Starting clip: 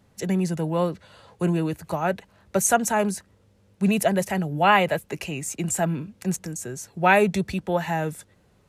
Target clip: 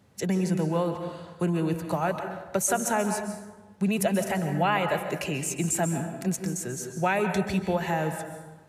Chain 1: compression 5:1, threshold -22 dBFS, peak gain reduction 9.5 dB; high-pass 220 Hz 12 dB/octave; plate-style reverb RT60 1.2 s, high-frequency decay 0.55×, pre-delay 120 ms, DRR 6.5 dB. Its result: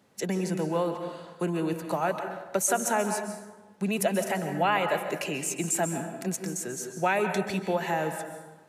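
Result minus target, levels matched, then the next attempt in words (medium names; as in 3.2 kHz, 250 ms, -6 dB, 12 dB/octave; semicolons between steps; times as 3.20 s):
125 Hz band -4.5 dB
compression 5:1, threshold -22 dBFS, peak gain reduction 9.5 dB; high-pass 66 Hz 12 dB/octave; plate-style reverb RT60 1.2 s, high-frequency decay 0.55×, pre-delay 120 ms, DRR 6.5 dB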